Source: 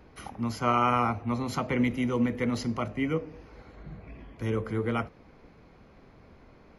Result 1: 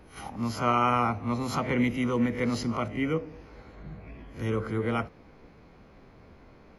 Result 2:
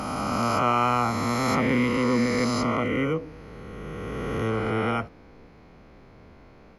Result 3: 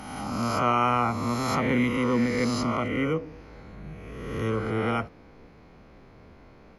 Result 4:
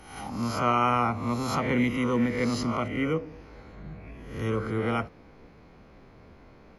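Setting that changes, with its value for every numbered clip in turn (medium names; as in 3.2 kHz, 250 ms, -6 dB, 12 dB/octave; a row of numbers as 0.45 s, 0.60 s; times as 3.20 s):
reverse spectral sustain, rising 60 dB in: 0.3 s, 3.19 s, 1.48 s, 0.71 s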